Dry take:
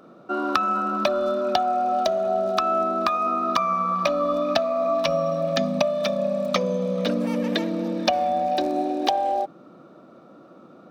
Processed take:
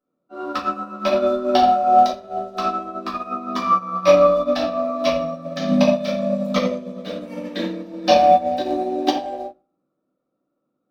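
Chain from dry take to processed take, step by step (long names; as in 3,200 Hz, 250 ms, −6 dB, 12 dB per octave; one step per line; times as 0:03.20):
low-shelf EQ 84 Hz +6 dB
rectangular room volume 110 cubic metres, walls mixed, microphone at 2 metres
expander for the loud parts 2.5 to 1, over −33 dBFS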